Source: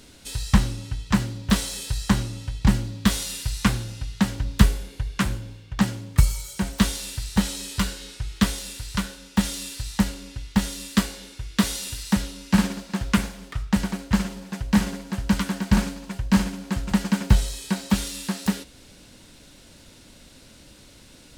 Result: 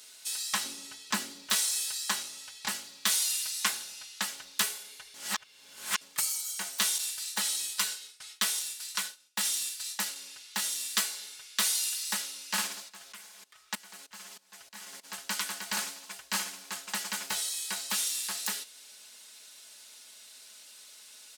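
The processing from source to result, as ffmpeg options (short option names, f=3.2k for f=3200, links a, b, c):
-filter_complex "[0:a]asettb=1/sr,asplit=3[a][b][c];[a]atrim=end=0.644[d];[b]atrim=start=0.64:end=1.47,asetpts=PTS-STARTPTS,afade=t=in:d=0.004:c=qsin,afade=t=out:st=0.826:d=0.004:c=qsin,equalizer=f=270:w=1.1:g=13.5[e];[c]atrim=start=1.466[f];[d][e]acrossfade=d=0.004:c1=hsin:c2=qsin[g];[g][f]acrossfade=d=0.004:c1=qsin:c2=hsin,asettb=1/sr,asplit=3[h][i][j];[h]atrim=end=6.984[k];[i]atrim=start=6.98:end=10.16,asetpts=PTS-STARTPTS,afade=t=in:d=0.004:c=qsin,afade=t=out:st=3.176:d=0.004:c=qsin,agate=range=-33dB:threshold=-34dB:ratio=3:release=100:detection=peak[l];[j]atrim=start=10.156[m];[k][l]acrossfade=d=0.004:c1=hsin:c2=qsin[n];[n][m]acrossfade=d=0.004:c1=qsin:c2=hsin,asplit=3[o][p][q];[o]afade=t=out:st=12.88:d=0.02[r];[p]aeval=exprs='val(0)*pow(10,-21*if(lt(mod(-3.2*n/s,1),2*abs(-3.2)/1000),1-mod(-3.2*n/s,1)/(2*abs(-3.2)/1000),(mod(-3.2*n/s,1)-2*abs(-3.2)/1000)/(1-2*abs(-3.2)/1000))/20)':c=same,afade=t=in:st=12.88:d=0.02,afade=t=out:st=15.03:d=0.02[s];[q]afade=t=in:st=15.03:d=0.02[t];[r][s][t]amix=inputs=3:normalize=0,asplit=3[u][v][w];[u]atrim=end=5.142[x];[v]atrim=start=5.138:end=6.012,asetpts=PTS-STARTPTS,areverse[y];[w]atrim=start=6.008[z];[x][y]acrossfade=d=0.004:c1=hsin:c2=hsin[aa];[aa][z]acrossfade=d=0.004:c1=hsin:c2=hsin,highpass=800,highshelf=f=3.9k:g=11,aecho=1:1:4.7:0.49,volume=-6.5dB"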